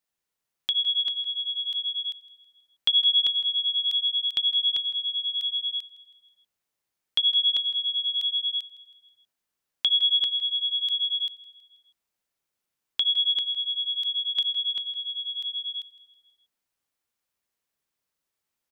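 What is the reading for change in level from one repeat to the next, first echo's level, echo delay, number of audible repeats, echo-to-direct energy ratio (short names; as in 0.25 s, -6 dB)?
no steady repeat, -18.0 dB, 0.161 s, 6, -5.0 dB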